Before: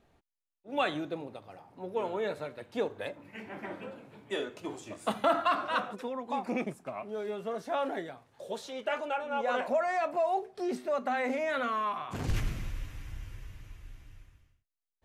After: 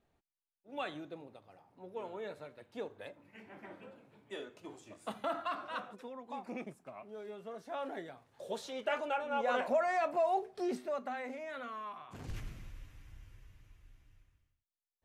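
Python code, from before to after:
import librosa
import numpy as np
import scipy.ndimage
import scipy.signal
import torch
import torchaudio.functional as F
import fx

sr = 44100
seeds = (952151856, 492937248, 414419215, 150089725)

y = fx.gain(x, sr, db=fx.line((7.63, -10.0), (8.49, -2.0), (10.65, -2.0), (11.32, -12.0)))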